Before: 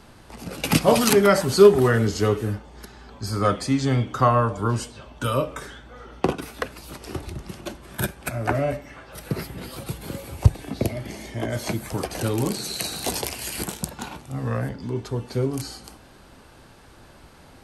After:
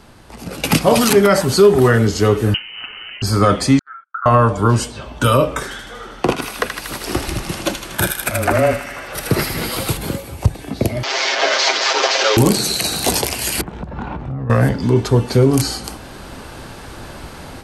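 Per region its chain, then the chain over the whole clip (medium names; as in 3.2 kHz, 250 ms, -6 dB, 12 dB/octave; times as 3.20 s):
2.54–3.22 s: high-pass 47 Hz + frequency inversion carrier 3 kHz
3.79–4.26 s: Butterworth band-pass 1.4 kHz, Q 7.2 + gate -54 dBFS, range -28 dB
5.63–9.97 s: bass shelf 240 Hz -6.5 dB + frequency shift -17 Hz + feedback echo behind a high-pass 79 ms, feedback 69%, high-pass 1.6 kHz, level -4.5 dB
11.03–12.37 s: one-bit delta coder 32 kbps, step -24 dBFS + Bessel high-pass 660 Hz, order 8 + comb 7.5 ms, depth 83%
13.61–14.50 s: low-pass 1.6 kHz + bass shelf 110 Hz +10.5 dB + compression 8:1, threshold -36 dBFS
whole clip: level rider; loudness maximiser +5.5 dB; trim -1.5 dB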